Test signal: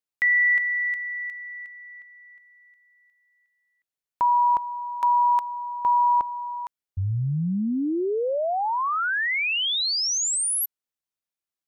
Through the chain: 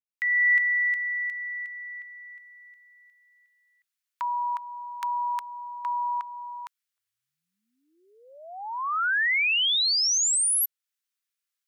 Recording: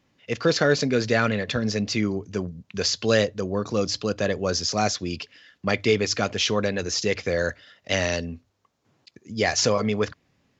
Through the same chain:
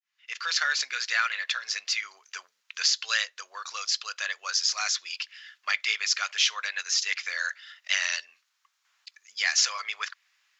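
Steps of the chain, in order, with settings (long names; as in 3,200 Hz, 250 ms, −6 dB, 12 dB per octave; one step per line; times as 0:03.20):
fade in at the beginning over 0.58 s
high-pass filter 1,300 Hz 24 dB per octave
in parallel at −2 dB: downward compressor, threshold −39 dBFS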